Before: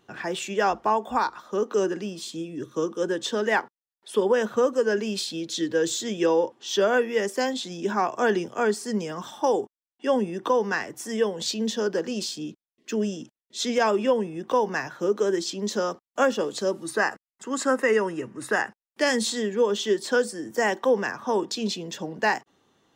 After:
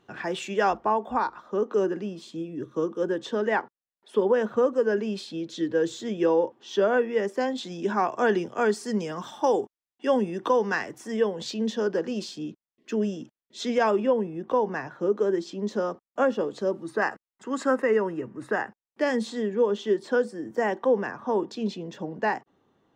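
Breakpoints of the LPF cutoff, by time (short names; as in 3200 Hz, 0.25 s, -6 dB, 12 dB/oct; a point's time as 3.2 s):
LPF 6 dB/oct
3800 Hz
from 0.77 s 1400 Hz
from 7.58 s 3200 Hz
from 8.59 s 5300 Hz
from 10.98 s 2200 Hz
from 14 s 1100 Hz
from 17.02 s 2100 Hz
from 17.82 s 1100 Hz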